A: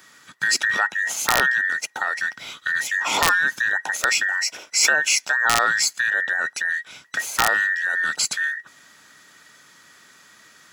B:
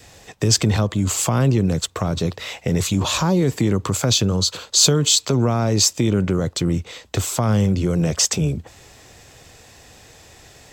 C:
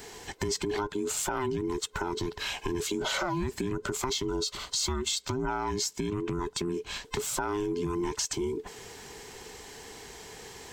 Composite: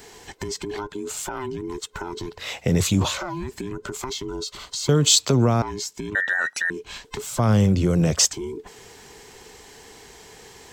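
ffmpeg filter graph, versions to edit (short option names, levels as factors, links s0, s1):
-filter_complex "[1:a]asplit=3[s0][s1][s2];[2:a]asplit=5[s3][s4][s5][s6][s7];[s3]atrim=end=2.49[s8];[s0]atrim=start=2.33:end=3.2[s9];[s4]atrim=start=3.04:end=4.892[s10];[s1]atrim=start=4.888:end=5.622[s11];[s5]atrim=start=5.618:end=6.152[s12];[0:a]atrim=start=6.148:end=6.702[s13];[s6]atrim=start=6.698:end=7.392[s14];[s2]atrim=start=7.388:end=8.312[s15];[s7]atrim=start=8.308[s16];[s8][s9]acrossfade=d=0.16:c1=tri:c2=tri[s17];[s17][s10]acrossfade=d=0.16:c1=tri:c2=tri[s18];[s18][s11]acrossfade=d=0.004:c1=hsin:c2=hsin[s19];[s19][s12]acrossfade=d=0.004:c1=hsin:c2=hsin[s20];[s20][s13]acrossfade=d=0.004:c1=hsin:c2=hsin[s21];[s21][s14]acrossfade=d=0.004:c1=hsin:c2=hsin[s22];[s22][s15]acrossfade=d=0.004:c1=hsin:c2=hsin[s23];[s23][s16]acrossfade=d=0.004:c1=hsin:c2=hsin"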